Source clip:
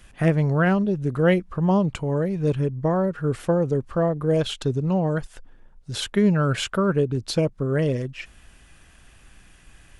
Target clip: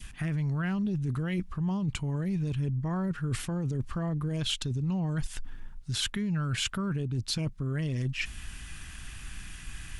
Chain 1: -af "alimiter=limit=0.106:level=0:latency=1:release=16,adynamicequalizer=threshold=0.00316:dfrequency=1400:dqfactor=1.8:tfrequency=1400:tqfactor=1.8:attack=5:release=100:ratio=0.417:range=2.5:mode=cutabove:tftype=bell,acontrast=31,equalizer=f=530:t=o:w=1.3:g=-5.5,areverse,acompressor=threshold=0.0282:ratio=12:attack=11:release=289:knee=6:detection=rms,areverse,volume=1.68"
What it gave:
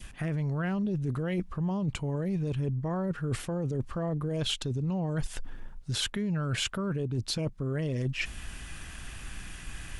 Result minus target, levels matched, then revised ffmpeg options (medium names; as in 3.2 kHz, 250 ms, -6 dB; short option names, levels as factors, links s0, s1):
500 Hz band +6.0 dB
-af "alimiter=limit=0.106:level=0:latency=1:release=16,adynamicequalizer=threshold=0.00316:dfrequency=1400:dqfactor=1.8:tfrequency=1400:tqfactor=1.8:attack=5:release=100:ratio=0.417:range=2.5:mode=cutabove:tftype=bell,acontrast=31,equalizer=f=530:t=o:w=1.3:g=-16.5,areverse,acompressor=threshold=0.0282:ratio=12:attack=11:release=289:knee=6:detection=rms,areverse,volume=1.68"